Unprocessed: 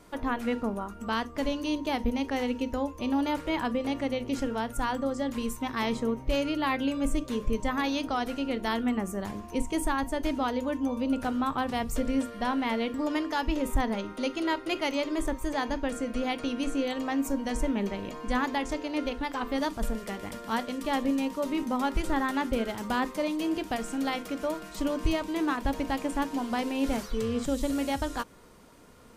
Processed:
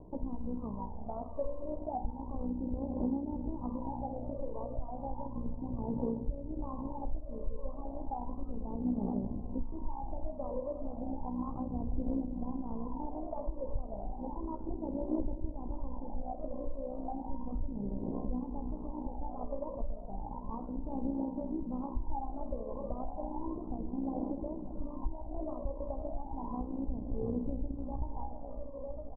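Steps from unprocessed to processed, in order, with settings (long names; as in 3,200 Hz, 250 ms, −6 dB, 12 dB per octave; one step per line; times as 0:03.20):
low-shelf EQ 160 Hz +6 dB
on a send: echo machine with several playback heads 318 ms, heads first and third, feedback 63%, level −13.5 dB
on the sum: spring reverb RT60 2.4 s, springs 52/57 ms, chirp 40 ms, DRR 9 dB
amplitude modulation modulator 61 Hz, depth 45%
phase shifter 0.33 Hz, delay 1.9 ms, feedback 73%
Butterworth low-pass 1,000 Hz 72 dB per octave
downward compressor 2.5 to 1, threshold −28 dBFS, peak gain reduction 14 dB
double-tracking delay 16 ms −10.5 dB
level −6 dB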